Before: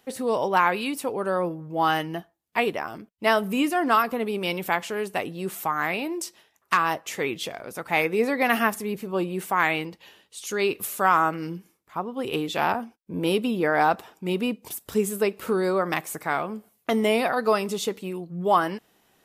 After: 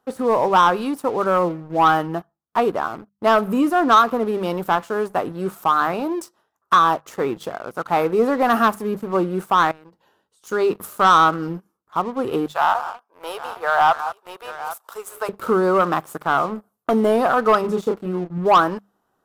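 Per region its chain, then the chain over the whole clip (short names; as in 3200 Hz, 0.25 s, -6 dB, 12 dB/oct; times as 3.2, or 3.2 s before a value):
9.71–10.44 notch 1200 Hz, Q 6.9 + compressor 4:1, threshold -44 dBFS
12.46–15.29 HPF 650 Hz 24 dB/oct + tapped delay 0.179/0.193/0.808 s -19/-14.5/-16 dB
17.61–18.38 high shelf 3100 Hz -9 dB + doubler 28 ms -4 dB
whole clip: resonant high shelf 1700 Hz -8.5 dB, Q 3; notches 50/100/150/200 Hz; sample leveller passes 2; gain -2 dB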